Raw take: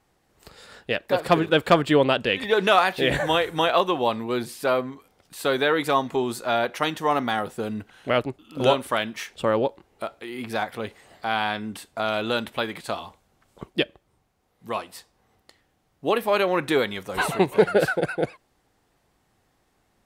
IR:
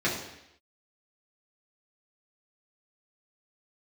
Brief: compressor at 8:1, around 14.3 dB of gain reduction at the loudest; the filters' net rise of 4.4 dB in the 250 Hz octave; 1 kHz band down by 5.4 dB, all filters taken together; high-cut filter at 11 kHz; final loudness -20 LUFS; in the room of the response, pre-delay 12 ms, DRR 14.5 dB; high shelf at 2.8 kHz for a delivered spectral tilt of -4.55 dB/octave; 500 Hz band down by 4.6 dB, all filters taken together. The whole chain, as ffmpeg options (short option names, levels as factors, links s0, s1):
-filter_complex "[0:a]lowpass=11000,equalizer=f=250:t=o:g=8.5,equalizer=f=500:t=o:g=-7,equalizer=f=1000:t=o:g=-6,highshelf=f=2800:g=3,acompressor=threshold=0.0355:ratio=8,asplit=2[s0][s1];[1:a]atrim=start_sample=2205,adelay=12[s2];[s1][s2]afir=irnorm=-1:irlink=0,volume=0.0473[s3];[s0][s3]amix=inputs=2:normalize=0,volume=5.01"